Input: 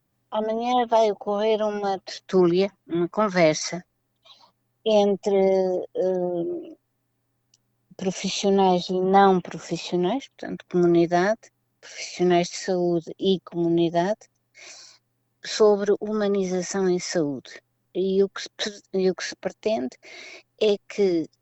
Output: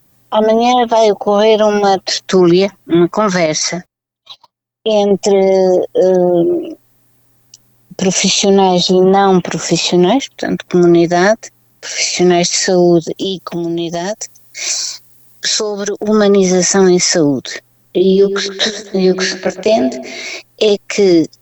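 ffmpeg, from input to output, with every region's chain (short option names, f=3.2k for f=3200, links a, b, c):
-filter_complex "[0:a]asettb=1/sr,asplit=3[a][b][c];[a]atrim=end=3.464[d];[b]atrim=start=3.46:end=5.11,asetpts=PTS-STARTPTS,afade=t=in:d=0.004:c=qsin,afade=t=out:st=1.646:d=0.004:c=qsin,agate=range=-27dB:threshold=-52dB:ratio=16:release=100:detection=peak,highshelf=f=6.2k:g=-7,acompressor=threshold=-39dB:ratio=1.5:attack=3.2:release=140:knee=1:detection=peak[e];[c]atrim=start=5.106[f];[d][e]acrossfade=d=0.004:c1=hsin:c2=qsin[g];[g][f]acrossfade=d=0.004:c1=qsin:c2=hsin,asettb=1/sr,asplit=3[h][i][j];[h]atrim=end=13.164[k];[i]atrim=start=13.16:end=16.08,asetpts=PTS-STARTPTS,afade=t=in:d=0.004:c=qsin,afade=t=out:st=2.916:d=0.004:c=qsin,highshelf=f=3.5k:g=9.5,acompressor=threshold=-30dB:ratio=12:attack=3.2:release=140:knee=1:detection=peak[l];[j]atrim=start=16.076[m];[k][l]acrossfade=d=0.004:c1=hsin:c2=qsin[n];[n][m]acrossfade=d=0.004:c1=qsin:c2=hsin,asettb=1/sr,asplit=3[o][p][q];[o]atrim=end=17.984[r];[p]atrim=start=17.98:end=20.25,asetpts=PTS-STARTPTS,afade=t=in:d=0.004:c=qsin,afade=t=out:st=2.266:d=0.004:c=qsin,acrossover=split=5400[s][t];[t]acompressor=threshold=-46dB:ratio=4:attack=1:release=60[u];[s][u]amix=inputs=2:normalize=0,asplit=2[v][w];[w]adelay=128,lowpass=f=2.1k:p=1,volume=-12.5dB,asplit=2[x][y];[y]adelay=128,lowpass=f=2.1k:p=1,volume=0.53,asplit=2[z][aa];[aa]adelay=128,lowpass=f=2.1k:p=1,volume=0.53,asplit=2[ab][ac];[ac]adelay=128,lowpass=f=2.1k:p=1,volume=0.53,asplit=2[ad][ae];[ae]adelay=128,lowpass=f=2.1k:p=1,volume=0.53[af];[v][x][z][ab][ad][af]amix=inputs=6:normalize=0,atrim=end_sample=100107,flanger=delay=19.5:depth=2.8:speed=2.1[ag];[q]atrim=start=20.246[ah];[r][ag]acrossfade=d=0.004:c1=hsin:c2=qsin[ai];[ai][ah]acrossfade=d=0.004:c1=qsin:c2=hsin,aemphasis=mode=production:type=cd,alimiter=level_in=17dB:limit=-1dB:release=50:level=0:latency=1,volume=-1dB"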